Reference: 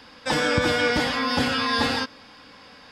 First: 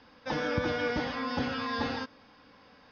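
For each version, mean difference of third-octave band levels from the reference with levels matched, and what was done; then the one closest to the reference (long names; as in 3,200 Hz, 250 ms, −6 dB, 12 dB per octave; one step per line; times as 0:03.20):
4.0 dB: linear-phase brick-wall low-pass 6,500 Hz
high-shelf EQ 2,100 Hz −9 dB
level −7 dB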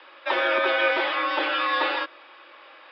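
10.5 dB: hollow resonant body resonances 1,200/2,400 Hz, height 6 dB, ringing for 20 ms
single-sideband voice off tune +52 Hz 340–3,600 Hz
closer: first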